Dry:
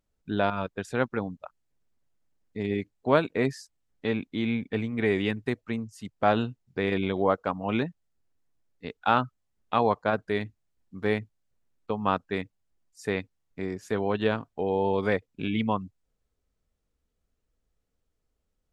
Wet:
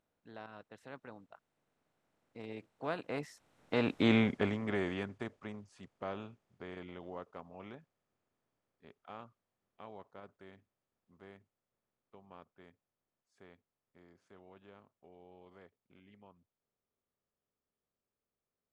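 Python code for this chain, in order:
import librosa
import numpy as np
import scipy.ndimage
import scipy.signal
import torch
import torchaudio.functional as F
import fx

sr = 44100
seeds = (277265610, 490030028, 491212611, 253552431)

y = fx.bin_compress(x, sr, power=0.6)
y = fx.doppler_pass(y, sr, speed_mps=27, closest_m=5.1, pass_at_s=4.09)
y = F.gain(torch.from_numpy(y), -1.0).numpy()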